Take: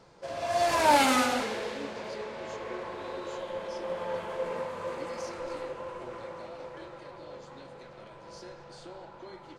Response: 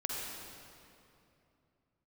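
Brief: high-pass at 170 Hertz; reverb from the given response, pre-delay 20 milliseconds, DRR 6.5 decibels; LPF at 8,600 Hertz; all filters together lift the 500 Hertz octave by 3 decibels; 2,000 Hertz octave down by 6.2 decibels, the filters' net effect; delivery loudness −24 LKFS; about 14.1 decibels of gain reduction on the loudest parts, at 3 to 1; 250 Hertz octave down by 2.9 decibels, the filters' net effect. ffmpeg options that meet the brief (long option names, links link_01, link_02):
-filter_complex "[0:a]highpass=170,lowpass=8600,equalizer=frequency=250:width_type=o:gain=-4,equalizer=frequency=500:width_type=o:gain=5,equalizer=frequency=2000:width_type=o:gain=-8.5,acompressor=threshold=-36dB:ratio=3,asplit=2[link_01][link_02];[1:a]atrim=start_sample=2205,adelay=20[link_03];[link_02][link_03]afir=irnorm=-1:irlink=0,volume=-10dB[link_04];[link_01][link_04]amix=inputs=2:normalize=0,volume=14.5dB"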